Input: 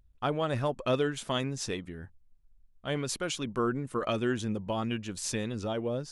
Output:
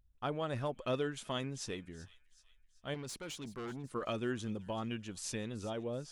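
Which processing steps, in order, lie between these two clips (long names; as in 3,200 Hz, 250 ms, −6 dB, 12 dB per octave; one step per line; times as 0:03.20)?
0:02.94–0:03.84: tube saturation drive 32 dB, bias 0.3
delay with a high-pass on its return 380 ms, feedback 45%, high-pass 2,400 Hz, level −16 dB
level −7 dB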